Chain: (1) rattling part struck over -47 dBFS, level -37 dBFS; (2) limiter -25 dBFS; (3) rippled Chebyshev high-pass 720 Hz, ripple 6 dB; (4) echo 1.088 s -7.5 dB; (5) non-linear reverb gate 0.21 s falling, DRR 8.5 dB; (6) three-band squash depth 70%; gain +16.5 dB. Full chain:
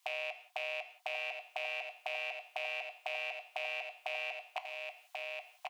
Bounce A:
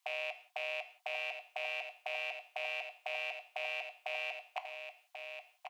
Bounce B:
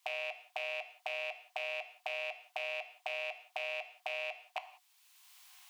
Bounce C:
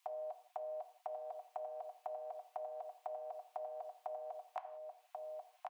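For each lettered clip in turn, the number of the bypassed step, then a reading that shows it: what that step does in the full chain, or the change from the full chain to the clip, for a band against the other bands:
6, momentary loudness spread change +3 LU; 4, momentary loudness spread change +2 LU; 1, momentary loudness spread change -2 LU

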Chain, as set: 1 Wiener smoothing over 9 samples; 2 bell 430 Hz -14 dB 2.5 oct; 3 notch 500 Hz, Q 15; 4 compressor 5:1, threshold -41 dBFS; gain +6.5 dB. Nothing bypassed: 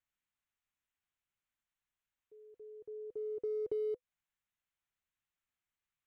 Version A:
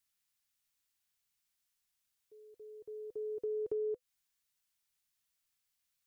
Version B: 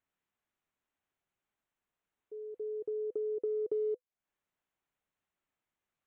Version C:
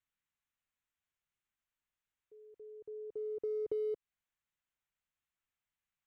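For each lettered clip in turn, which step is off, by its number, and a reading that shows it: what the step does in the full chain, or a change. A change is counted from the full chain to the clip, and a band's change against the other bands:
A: 1, momentary loudness spread change +1 LU; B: 2, momentary loudness spread change -4 LU; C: 3, momentary loudness spread change +1 LU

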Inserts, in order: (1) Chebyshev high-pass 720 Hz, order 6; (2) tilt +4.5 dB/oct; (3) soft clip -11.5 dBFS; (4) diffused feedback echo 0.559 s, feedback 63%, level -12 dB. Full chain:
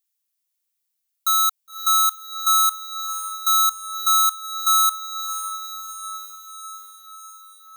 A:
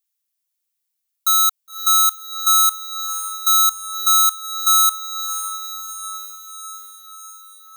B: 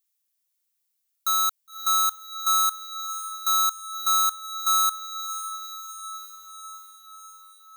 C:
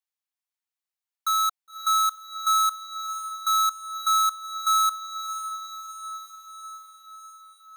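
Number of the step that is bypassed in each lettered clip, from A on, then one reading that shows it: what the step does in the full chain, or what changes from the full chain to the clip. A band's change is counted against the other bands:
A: 3, crest factor change +2.5 dB; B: 1, crest factor change +4.0 dB; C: 2, crest factor change -2.0 dB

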